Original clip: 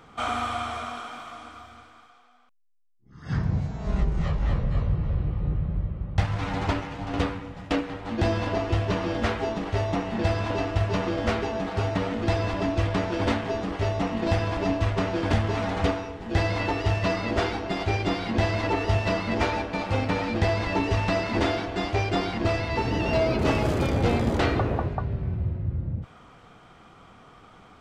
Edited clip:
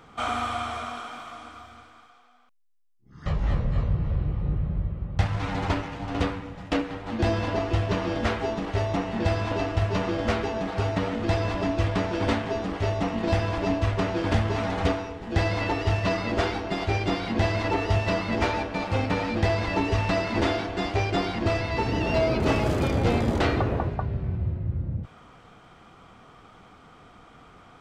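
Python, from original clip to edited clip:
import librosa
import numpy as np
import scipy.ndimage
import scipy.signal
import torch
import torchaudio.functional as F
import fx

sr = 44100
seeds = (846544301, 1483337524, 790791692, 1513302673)

y = fx.edit(x, sr, fx.cut(start_s=3.26, length_s=0.99), tone=tone)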